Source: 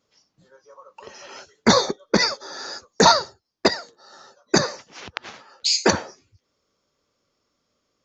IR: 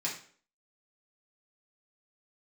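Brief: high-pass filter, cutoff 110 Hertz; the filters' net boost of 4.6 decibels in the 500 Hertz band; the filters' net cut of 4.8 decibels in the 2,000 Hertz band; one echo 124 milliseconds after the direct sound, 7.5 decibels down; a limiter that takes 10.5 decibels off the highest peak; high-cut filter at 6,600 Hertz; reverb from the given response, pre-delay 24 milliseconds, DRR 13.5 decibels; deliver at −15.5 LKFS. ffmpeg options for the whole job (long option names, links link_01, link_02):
-filter_complex "[0:a]highpass=110,lowpass=6600,equalizer=frequency=500:width_type=o:gain=6,equalizer=frequency=2000:width_type=o:gain=-6.5,alimiter=limit=-10.5dB:level=0:latency=1,aecho=1:1:124:0.422,asplit=2[link_01][link_02];[1:a]atrim=start_sample=2205,adelay=24[link_03];[link_02][link_03]afir=irnorm=-1:irlink=0,volume=-18dB[link_04];[link_01][link_04]amix=inputs=2:normalize=0,volume=8.5dB"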